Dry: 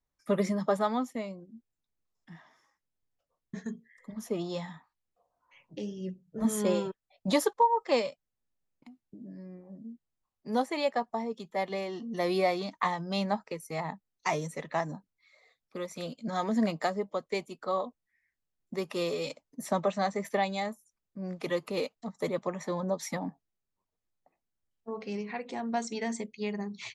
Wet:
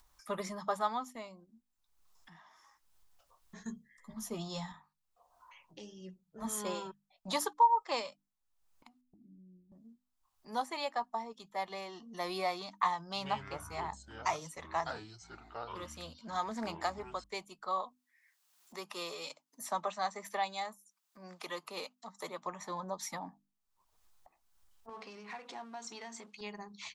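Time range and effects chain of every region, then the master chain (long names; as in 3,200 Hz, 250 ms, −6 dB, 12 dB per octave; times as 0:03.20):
0:03.60–0:04.72: bass and treble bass +11 dB, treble +5 dB + double-tracking delay 13 ms −7 dB
0:09.01–0:09.72: inverse Chebyshev low-pass filter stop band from 1,800 Hz, stop band 80 dB + flanger swept by the level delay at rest 4.3 ms, full sweep at −43 dBFS
0:13.05–0:17.24: delay with pitch and tempo change per echo 104 ms, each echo −6 semitones, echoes 3, each echo −6 dB + highs frequency-modulated by the lows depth 0.11 ms
0:17.83–0:22.46: Butterworth high-pass 150 Hz + low-shelf EQ 220 Hz −7.5 dB + one half of a high-frequency compander encoder only
0:24.89–0:26.41: mu-law and A-law mismatch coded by mu + downward compressor, threshold −34 dBFS + band-pass filter 170–6,800 Hz
whole clip: mains-hum notches 50/100/150/200/250/300 Hz; upward compression, threshold −47 dBFS; octave-band graphic EQ 125/250/500/1,000/2,000 Hz −11/−8/−10/+5/−5 dB; level −1.5 dB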